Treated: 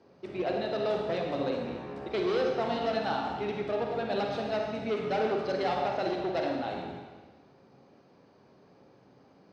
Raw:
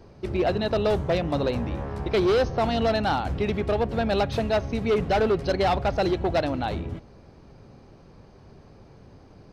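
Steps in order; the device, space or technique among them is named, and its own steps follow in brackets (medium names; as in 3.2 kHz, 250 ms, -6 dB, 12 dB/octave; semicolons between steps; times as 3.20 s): supermarket ceiling speaker (band-pass 210–5800 Hz; reverberation RT60 1.4 s, pre-delay 36 ms, DRR 0.5 dB); trim -8.5 dB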